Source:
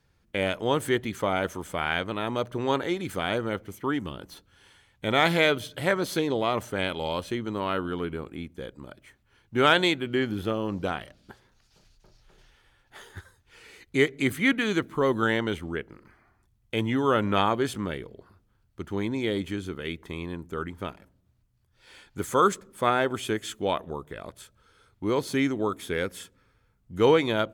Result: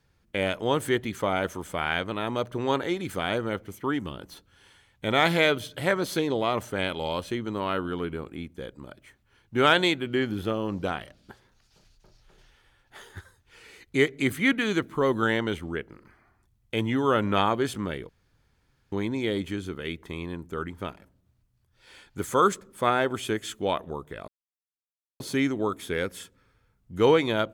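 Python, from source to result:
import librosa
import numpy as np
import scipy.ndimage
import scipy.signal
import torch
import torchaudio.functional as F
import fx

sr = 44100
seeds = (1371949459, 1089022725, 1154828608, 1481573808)

y = fx.edit(x, sr, fx.room_tone_fill(start_s=18.09, length_s=0.83),
    fx.silence(start_s=24.28, length_s=0.92), tone=tone)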